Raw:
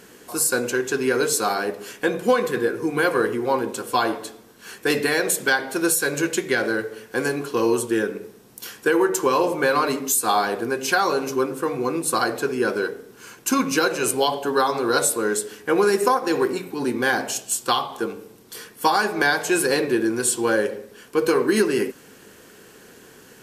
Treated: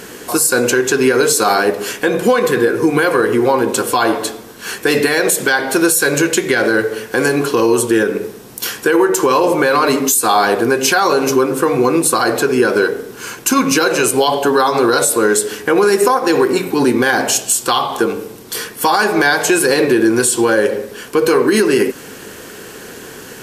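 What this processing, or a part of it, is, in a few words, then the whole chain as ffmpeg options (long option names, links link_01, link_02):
mastering chain: -af "equalizer=frequency=190:width_type=o:width=0.77:gain=-2,acompressor=threshold=-25dB:ratio=2,asoftclip=type=hard:threshold=-13dB,alimiter=level_in=17dB:limit=-1dB:release=50:level=0:latency=1,volume=-2.5dB"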